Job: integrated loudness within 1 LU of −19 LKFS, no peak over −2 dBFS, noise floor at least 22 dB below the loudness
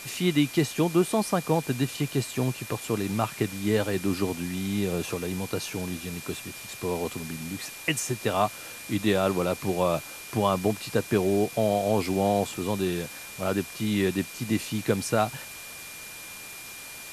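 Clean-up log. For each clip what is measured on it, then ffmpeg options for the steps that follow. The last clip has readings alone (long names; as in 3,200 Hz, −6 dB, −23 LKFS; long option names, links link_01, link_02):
interfering tone 2,400 Hz; level of the tone −44 dBFS; background noise floor −42 dBFS; target noise floor −50 dBFS; integrated loudness −27.5 LKFS; sample peak −10.0 dBFS; target loudness −19.0 LKFS
→ -af "bandreject=frequency=2400:width=30"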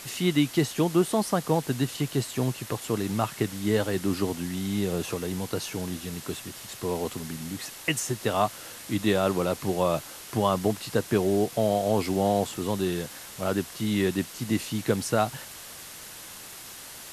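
interfering tone none found; background noise floor −43 dBFS; target noise floor −50 dBFS
→ -af "afftdn=noise_reduction=7:noise_floor=-43"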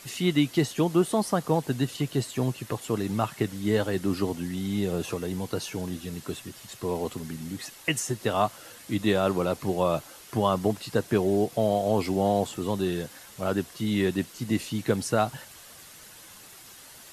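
background noise floor −49 dBFS; target noise floor −50 dBFS
→ -af "afftdn=noise_reduction=6:noise_floor=-49"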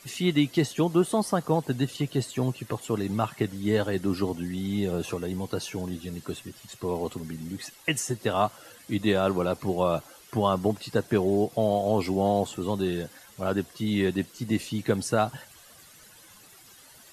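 background noise floor −53 dBFS; integrated loudness −28.0 LKFS; sample peak −10.0 dBFS; target loudness −19.0 LKFS
→ -af "volume=9dB,alimiter=limit=-2dB:level=0:latency=1"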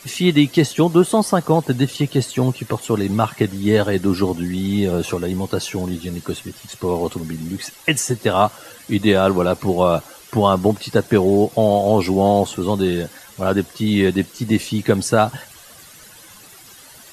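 integrated loudness −19.0 LKFS; sample peak −2.0 dBFS; background noise floor −44 dBFS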